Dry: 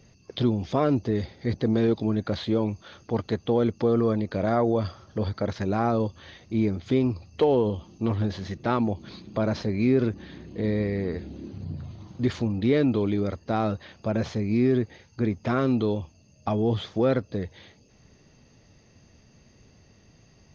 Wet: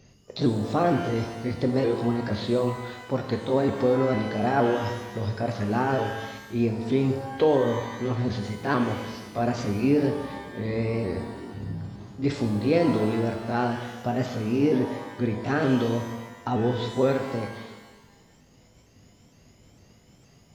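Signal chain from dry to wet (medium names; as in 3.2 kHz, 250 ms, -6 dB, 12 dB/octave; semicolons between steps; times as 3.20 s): sawtooth pitch modulation +3 st, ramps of 460 ms; pitch-shifted reverb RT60 1.1 s, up +12 st, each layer -8 dB, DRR 4.5 dB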